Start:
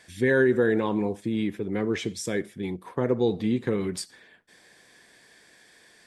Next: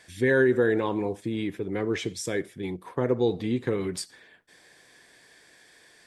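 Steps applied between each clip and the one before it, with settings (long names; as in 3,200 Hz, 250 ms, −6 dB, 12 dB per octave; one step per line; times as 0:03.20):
parametric band 210 Hz −7.5 dB 0.23 octaves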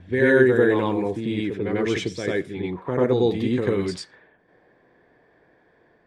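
low-pass that shuts in the quiet parts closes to 820 Hz, open at −23.5 dBFS
backwards echo 94 ms −3.5 dB
level +3.5 dB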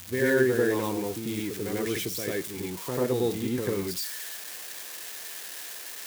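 spike at every zero crossing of −19 dBFS
level −6.5 dB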